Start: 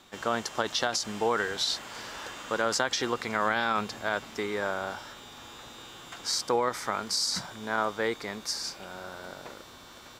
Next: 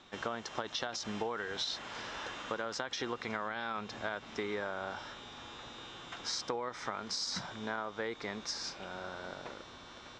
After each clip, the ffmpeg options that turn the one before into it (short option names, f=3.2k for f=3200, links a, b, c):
-af "lowpass=f=5.8k:w=0.5412,lowpass=f=5.8k:w=1.3066,bandreject=f=4.6k:w=9.4,acompressor=threshold=-31dB:ratio=12,volume=-1.5dB"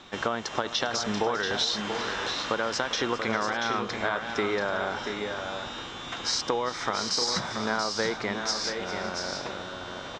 -af "aecho=1:1:399|684|717|785:0.168|0.447|0.211|0.133,volume=9dB"